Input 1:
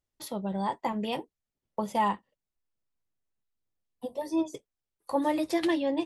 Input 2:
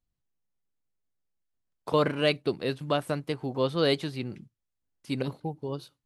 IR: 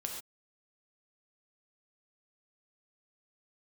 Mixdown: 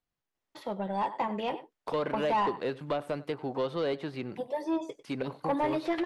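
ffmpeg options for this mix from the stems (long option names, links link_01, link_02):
-filter_complex "[0:a]acrossover=split=3200[link_01][link_02];[link_02]acompressor=threshold=-52dB:ratio=4:attack=1:release=60[link_03];[link_01][link_03]amix=inputs=2:normalize=0,adelay=350,volume=-6dB,asplit=2[link_04][link_05];[link_05]volume=-16dB[link_06];[1:a]acrossover=split=960|2100[link_07][link_08][link_09];[link_07]acompressor=threshold=-27dB:ratio=4[link_10];[link_08]acompressor=threshold=-47dB:ratio=4[link_11];[link_09]acompressor=threshold=-47dB:ratio=4[link_12];[link_10][link_11][link_12]amix=inputs=3:normalize=0,volume=-5.5dB,asplit=2[link_13][link_14];[link_14]volume=-22.5dB[link_15];[link_06][link_15]amix=inputs=2:normalize=0,aecho=0:1:97:1[link_16];[link_04][link_13][link_16]amix=inputs=3:normalize=0,asplit=2[link_17][link_18];[link_18]highpass=frequency=720:poles=1,volume=18dB,asoftclip=type=tanh:threshold=-18.5dB[link_19];[link_17][link_19]amix=inputs=2:normalize=0,lowpass=frequency=1900:poles=1,volume=-6dB"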